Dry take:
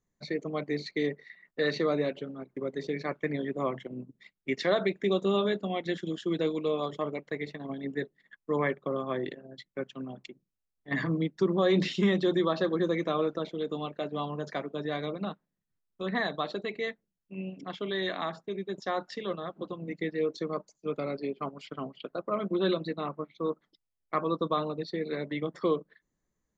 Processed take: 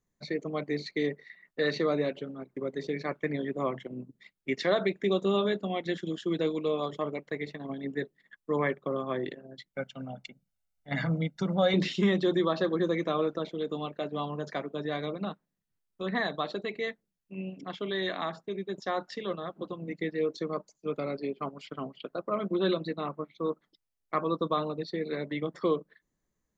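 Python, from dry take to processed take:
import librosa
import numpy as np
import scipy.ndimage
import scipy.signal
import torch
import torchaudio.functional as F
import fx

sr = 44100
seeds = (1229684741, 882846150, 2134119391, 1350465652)

y = fx.comb(x, sr, ms=1.4, depth=0.78, at=(9.73, 11.74))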